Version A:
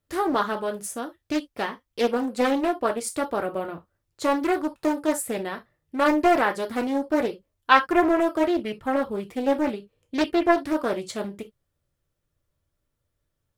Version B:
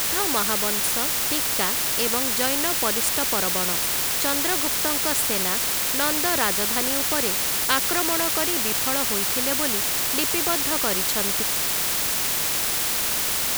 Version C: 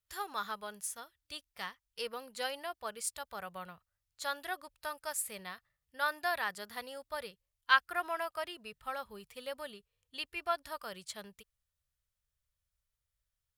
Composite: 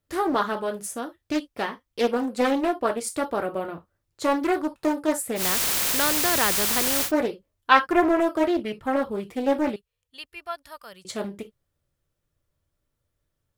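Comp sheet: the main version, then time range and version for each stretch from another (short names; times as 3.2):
A
5.4–7.07 from B, crossfade 0.10 s
9.76–11.05 from C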